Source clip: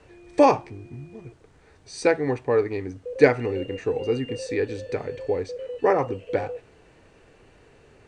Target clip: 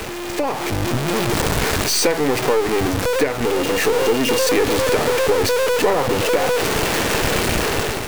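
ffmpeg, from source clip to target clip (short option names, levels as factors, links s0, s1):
-filter_complex "[0:a]aeval=exprs='val(0)+0.5*0.106*sgn(val(0))':c=same,acrossover=split=110[s0][s1];[s0]acrusher=bits=4:mix=0:aa=0.000001[s2];[s1]highpass=f=160:p=1[s3];[s2][s3]amix=inputs=2:normalize=0,acompressor=threshold=0.112:ratio=12,aeval=exprs='0.355*(cos(1*acos(clip(val(0)/0.355,-1,1)))-cos(1*PI/2))+0.0251*(cos(8*acos(clip(val(0)/0.355,-1,1)))-cos(8*PI/2))':c=same,dynaudnorm=f=170:g=5:m=3.55,aeval=exprs='val(0)+0.00708*(sin(2*PI*60*n/s)+sin(2*PI*2*60*n/s)/2+sin(2*PI*3*60*n/s)/3+sin(2*PI*4*60*n/s)/4+sin(2*PI*5*60*n/s)/5)':c=same,volume=0.708"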